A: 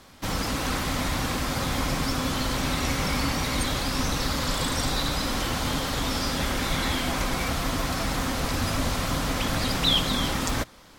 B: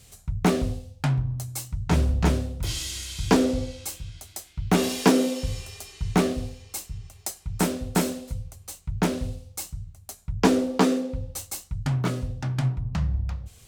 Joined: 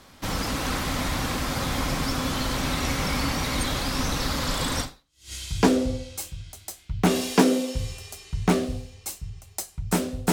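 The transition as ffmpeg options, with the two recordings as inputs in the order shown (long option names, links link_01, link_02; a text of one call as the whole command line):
ffmpeg -i cue0.wav -i cue1.wav -filter_complex "[0:a]apad=whole_dur=10.32,atrim=end=10.32,atrim=end=5.33,asetpts=PTS-STARTPTS[link_01];[1:a]atrim=start=2.49:end=8,asetpts=PTS-STARTPTS[link_02];[link_01][link_02]acrossfade=duration=0.52:curve1=exp:curve2=exp" out.wav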